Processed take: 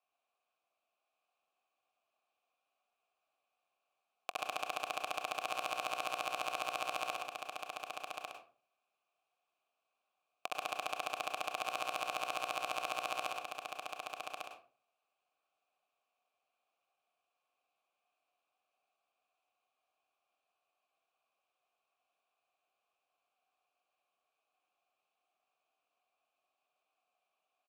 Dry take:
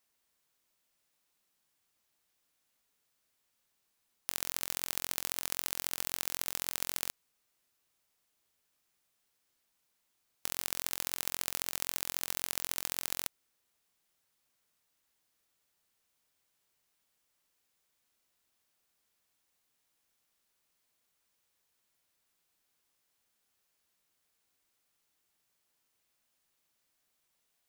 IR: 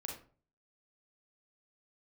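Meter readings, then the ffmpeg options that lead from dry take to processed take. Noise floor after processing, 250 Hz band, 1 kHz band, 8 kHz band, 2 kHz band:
under -85 dBFS, -3.0 dB, +11.0 dB, -12.5 dB, +3.0 dB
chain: -filter_complex "[0:a]aeval=exprs='0.596*(cos(1*acos(clip(val(0)/0.596,-1,1)))-cos(1*PI/2))+0.15*(cos(2*acos(clip(val(0)/0.596,-1,1)))-cos(2*PI/2))+0.266*(cos(4*acos(clip(val(0)/0.596,-1,1)))-cos(4*PI/2))+0.0237*(cos(6*acos(clip(val(0)/0.596,-1,1)))-cos(6*PI/2))+0.0376*(cos(7*acos(clip(val(0)/0.596,-1,1)))-cos(7*PI/2))':c=same,asplit=3[a][b][c];[a]bandpass=f=730:t=q:w=8,volume=0dB[d];[b]bandpass=f=1.09k:t=q:w=8,volume=-6dB[e];[c]bandpass=f=2.44k:t=q:w=8,volume=-9dB[f];[d][e][f]amix=inputs=3:normalize=0,equalizer=f=5.3k:t=o:w=0.33:g=-2.5,aecho=1:1:1149:0.562,asplit=2[g][h];[1:a]atrim=start_sample=2205,adelay=62[i];[h][i]afir=irnorm=-1:irlink=0,volume=-0.5dB[j];[g][j]amix=inputs=2:normalize=0,volume=13.5dB"

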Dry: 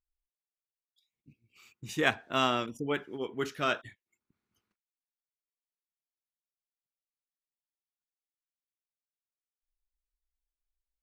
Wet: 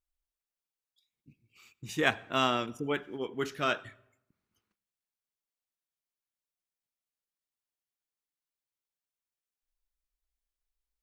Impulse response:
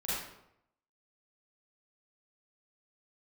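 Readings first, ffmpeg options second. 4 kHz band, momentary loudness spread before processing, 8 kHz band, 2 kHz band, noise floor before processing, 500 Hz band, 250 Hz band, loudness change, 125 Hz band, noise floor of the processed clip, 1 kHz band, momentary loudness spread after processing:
0.0 dB, 10 LU, 0.0 dB, 0.0 dB, under -85 dBFS, 0.0 dB, 0.0 dB, 0.0 dB, 0.0 dB, under -85 dBFS, 0.0 dB, 10 LU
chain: -filter_complex "[0:a]asplit=2[a][b];[1:a]atrim=start_sample=2205,lowshelf=f=150:g=12,adelay=37[c];[b][c]afir=irnorm=-1:irlink=0,volume=-28.5dB[d];[a][d]amix=inputs=2:normalize=0"

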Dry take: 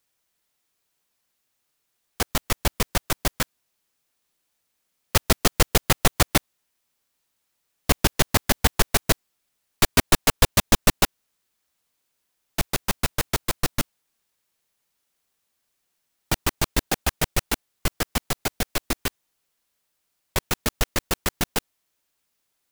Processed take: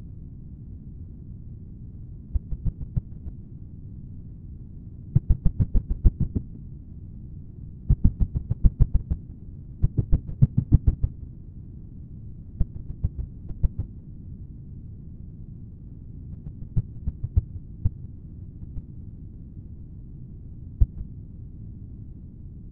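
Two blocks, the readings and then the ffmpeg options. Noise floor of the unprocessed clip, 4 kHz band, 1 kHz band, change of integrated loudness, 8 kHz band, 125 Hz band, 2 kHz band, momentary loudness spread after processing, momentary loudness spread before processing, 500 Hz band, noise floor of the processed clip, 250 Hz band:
-76 dBFS, under -40 dB, under -30 dB, -4.0 dB, under -40 dB, +4.5 dB, under -40 dB, 18 LU, 11 LU, -20.0 dB, -43 dBFS, -3.5 dB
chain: -filter_complex "[0:a]afftfilt=real='re*gte(hypot(re,im),0.891)':imag='im*gte(hypot(re,im),0.891)':win_size=1024:overlap=0.75,bandreject=f=1.4k:w=7,aeval=exprs='val(0)+0.00631*(sin(2*PI*60*n/s)+sin(2*PI*2*60*n/s)/2+sin(2*PI*3*60*n/s)/3+sin(2*PI*4*60*n/s)/4+sin(2*PI*5*60*n/s)/5)':c=same,acrossover=split=210[a][b];[b]acompressor=threshold=-26dB:ratio=4[c];[a][c]amix=inputs=2:normalize=0,bass=f=250:g=13,treble=f=4k:g=0,acrossover=split=280|560|2600[d][e][f][g];[f]acrusher=bits=4:dc=4:mix=0:aa=0.000001[h];[d][e][h][g]amix=inputs=4:normalize=0,afftfilt=real='hypot(re,im)*cos(2*PI*random(0))':imag='hypot(re,im)*sin(2*PI*random(1))':win_size=512:overlap=0.75,asplit=2[i][j];[j]adelay=186.6,volume=-18dB,highshelf=f=4k:g=-4.2[k];[i][k]amix=inputs=2:normalize=0"

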